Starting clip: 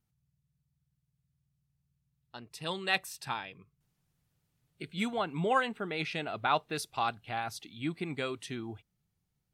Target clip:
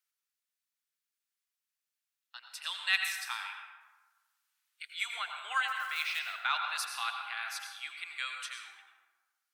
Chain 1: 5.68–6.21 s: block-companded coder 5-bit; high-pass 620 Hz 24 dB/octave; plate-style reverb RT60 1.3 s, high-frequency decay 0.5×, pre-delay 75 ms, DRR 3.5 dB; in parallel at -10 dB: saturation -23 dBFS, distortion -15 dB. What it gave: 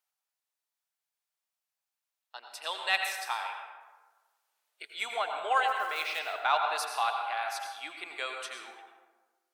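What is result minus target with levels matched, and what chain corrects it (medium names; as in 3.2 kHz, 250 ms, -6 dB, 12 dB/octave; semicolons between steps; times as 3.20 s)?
500 Hz band +19.5 dB
5.68–6.21 s: block-companded coder 5-bit; high-pass 1.3 kHz 24 dB/octave; plate-style reverb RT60 1.3 s, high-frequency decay 0.5×, pre-delay 75 ms, DRR 3.5 dB; in parallel at -10 dB: saturation -23 dBFS, distortion -16 dB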